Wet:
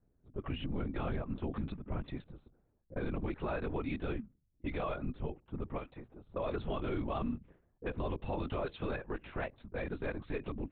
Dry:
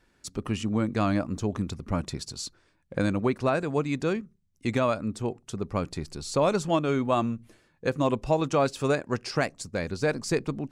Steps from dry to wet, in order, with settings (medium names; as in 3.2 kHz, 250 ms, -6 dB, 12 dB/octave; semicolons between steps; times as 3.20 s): LPC vocoder at 8 kHz whisper; 5.78–6.29 s: bass shelf 400 Hz -11.5 dB; level-controlled noise filter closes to 480 Hz, open at -23 dBFS; peak limiter -22 dBFS, peak gain reduction 11.5 dB; trim -5.5 dB